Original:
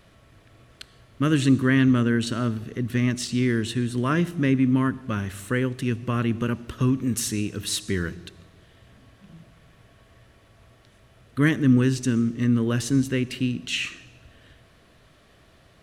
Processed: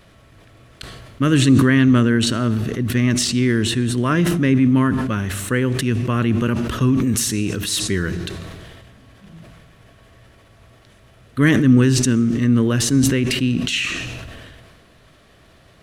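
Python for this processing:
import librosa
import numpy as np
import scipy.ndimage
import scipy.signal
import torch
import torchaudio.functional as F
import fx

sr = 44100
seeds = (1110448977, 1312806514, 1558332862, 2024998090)

y = fx.sustainer(x, sr, db_per_s=28.0)
y = F.gain(torch.from_numpy(y), 4.5).numpy()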